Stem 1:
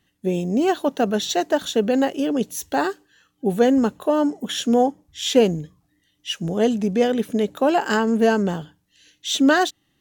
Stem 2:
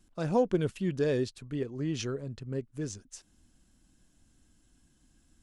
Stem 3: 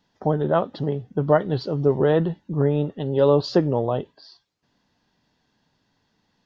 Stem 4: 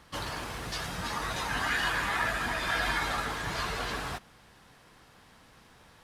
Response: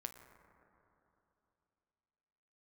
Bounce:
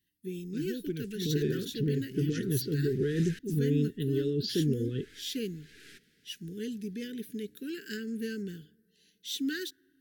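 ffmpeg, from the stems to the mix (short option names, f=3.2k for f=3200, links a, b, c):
-filter_complex "[0:a]highshelf=f=8.7k:g=6,aexciter=amount=1.5:drive=3.8:freq=3.9k,volume=-16dB,asplit=3[a][b][c];[b]volume=-18dB[d];[1:a]adelay=350,volume=-7dB[e];[2:a]alimiter=limit=-14.5dB:level=0:latency=1:release=17,adelay=1000,volume=-3.5dB[f];[3:a]highpass=290,acontrast=85,aeval=exprs='(tanh(25.1*val(0)+0.55)-tanh(0.55))/25.1':c=same,adelay=1800,volume=-14.5dB,asplit=3[g][h][i];[g]atrim=end=3.39,asetpts=PTS-STARTPTS,afade=t=out:st=3.386:d=0.004:c=hsin[j];[h]atrim=start=3.39:end=4.85,asetpts=PTS-STARTPTS,volume=0[k];[i]atrim=start=4.85,asetpts=PTS-STARTPTS,afade=t=in:d=0.004:c=hsin[l];[j][k][l]concat=n=3:v=0:a=1[m];[c]apad=whole_len=345389[n];[m][n]sidechaincompress=threshold=-49dB:ratio=12:attack=16:release=286[o];[4:a]atrim=start_sample=2205[p];[d][p]afir=irnorm=-1:irlink=0[q];[a][e][f][o][q]amix=inputs=5:normalize=0,asuperstop=centerf=820:order=12:qfactor=0.73"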